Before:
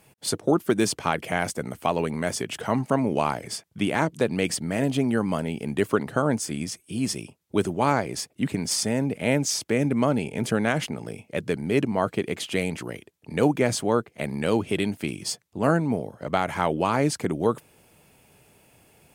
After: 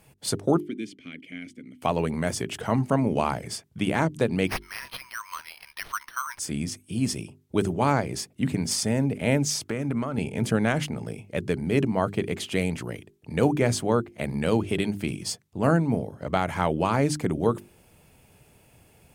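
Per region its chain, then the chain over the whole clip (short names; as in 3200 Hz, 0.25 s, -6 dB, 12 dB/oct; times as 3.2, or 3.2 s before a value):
0.6–1.82 vowel filter i + high shelf 6500 Hz +8.5 dB
4.47–6.39 brick-wall FIR high-pass 920 Hz + careless resampling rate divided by 6×, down none, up hold
9.62–10.18 bell 1300 Hz +9 dB 0.53 oct + compressor 12:1, threshold -23 dBFS
whole clip: low shelf 130 Hz +11 dB; notches 50/100/150/200/250/300/350/400 Hz; gain -1.5 dB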